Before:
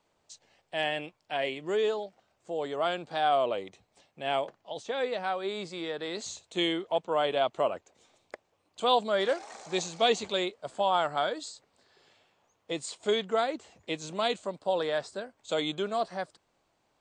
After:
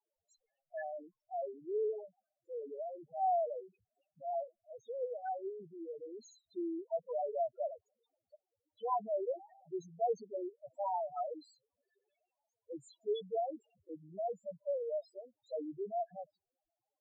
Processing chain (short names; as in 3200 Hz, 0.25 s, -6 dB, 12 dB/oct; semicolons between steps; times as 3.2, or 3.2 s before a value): dynamic EQ 1200 Hz, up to +5 dB, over -39 dBFS, Q 0.92; 1.93–3.17 treble ducked by the level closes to 540 Hz, closed at -26.5 dBFS; loudest bins only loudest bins 2; gain -7 dB